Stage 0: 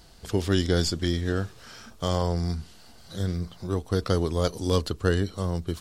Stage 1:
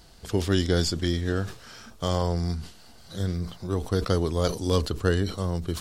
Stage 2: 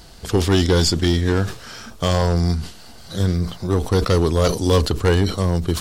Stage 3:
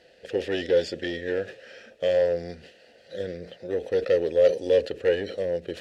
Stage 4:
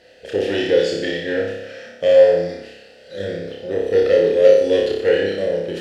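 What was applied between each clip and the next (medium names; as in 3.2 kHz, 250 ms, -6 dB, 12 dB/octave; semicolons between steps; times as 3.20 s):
decay stretcher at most 130 dB/s
hard clipper -18 dBFS, distortion -12 dB; trim +9 dB
vowel filter e; trim +5 dB
flutter echo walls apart 5.1 m, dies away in 0.81 s; trim +4.5 dB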